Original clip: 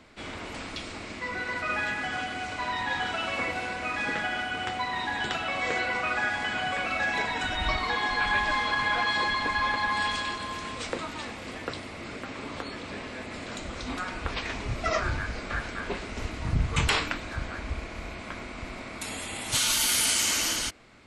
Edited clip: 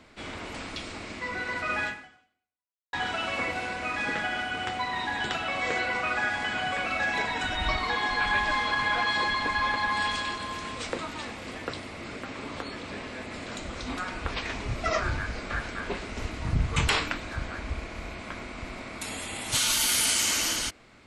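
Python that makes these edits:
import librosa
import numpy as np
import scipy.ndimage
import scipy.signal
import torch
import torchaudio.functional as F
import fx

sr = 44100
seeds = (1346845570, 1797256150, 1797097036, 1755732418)

y = fx.edit(x, sr, fx.fade_out_span(start_s=1.86, length_s=1.07, curve='exp'), tone=tone)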